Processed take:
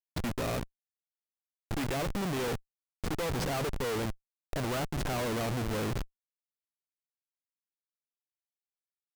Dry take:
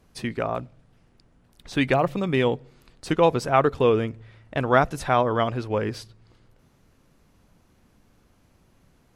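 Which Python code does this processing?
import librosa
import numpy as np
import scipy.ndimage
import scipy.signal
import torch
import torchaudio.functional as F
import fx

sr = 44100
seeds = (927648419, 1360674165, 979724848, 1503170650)

y = fx.schmitt(x, sr, flips_db=-31.5)
y = y * 10.0 ** (-5.5 / 20.0)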